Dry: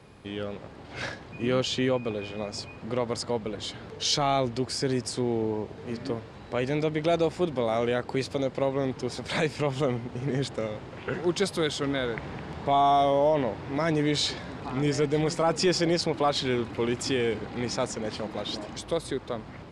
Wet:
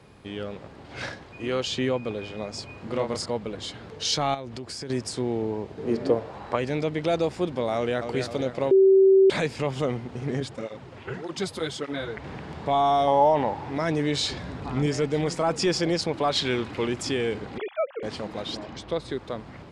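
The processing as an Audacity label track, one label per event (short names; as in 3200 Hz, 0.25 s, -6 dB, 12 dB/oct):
1.240000	1.640000	bell 170 Hz -9 dB 1.1 oct
2.660000	3.260000	doubler 30 ms -4 dB
4.340000	4.900000	compressor 4:1, threshold -33 dBFS
5.770000	6.550000	bell 290 Hz -> 1100 Hz +12 dB 1.6 oct
7.750000	8.150000	echo throw 0.26 s, feedback 55%, level -7 dB
8.710000	9.300000	bleep 385 Hz -12.5 dBFS
10.400000	12.240000	tape flanging out of phase nulls at 1.7 Hz, depth 6.4 ms
13.070000	13.700000	bell 840 Hz +14.5 dB 0.31 oct
14.310000	14.860000	low shelf 150 Hz +8.5 dB
16.310000	16.870000	bell 3000 Hz +4.5 dB 2.8 oct
17.580000	18.030000	sine-wave speech
18.570000	19.110000	LPF 4900 Hz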